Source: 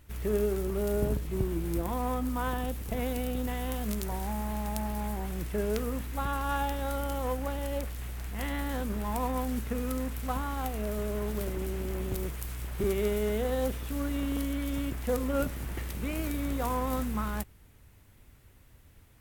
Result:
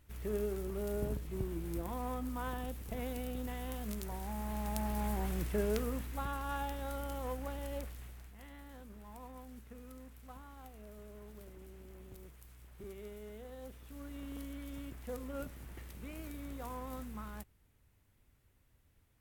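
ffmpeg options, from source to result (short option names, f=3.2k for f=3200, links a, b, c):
-af "volume=5.5dB,afade=t=in:st=4.25:d=1.01:silence=0.446684,afade=t=out:st=5.26:d=1.12:silence=0.446684,afade=t=out:st=7.82:d=0.56:silence=0.266073,afade=t=in:st=13.6:d=0.8:silence=0.473151"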